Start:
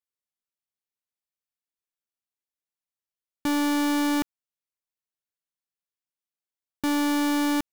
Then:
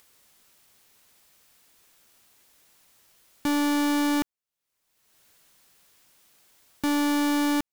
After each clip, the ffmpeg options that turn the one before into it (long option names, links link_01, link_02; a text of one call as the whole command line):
ffmpeg -i in.wav -af "acompressor=mode=upward:threshold=-36dB:ratio=2.5" out.wav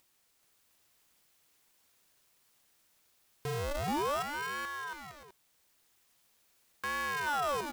ffmpeg -i in.wav -af "aecho=1:1:430|709.5|891.2|1009|1086:0.631|0.398|0.251|0.158|0.1,aeval=exprs='val(0)*sin(2*PI*780*n/s+780*0.8/0.43*sin(2*PI*0.43*n/s))':channel_layout=same,volume=-8dB" out.wav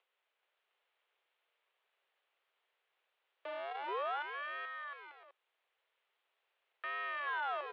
ffmpeg -i in.wav -af "highpass=frequency=230:width_type=q:width=0.5412,highpass=frequency=230:width_type=q:width=1.307,lowpass=frequency=3200:width_type=q:width=0.5176,lowpass=frequency=3200:width_type=q:width=0.7071,lowpass=frequency=3200:width_type=q:width=1.932,afreqshift=170,volume=-5dB" out.wav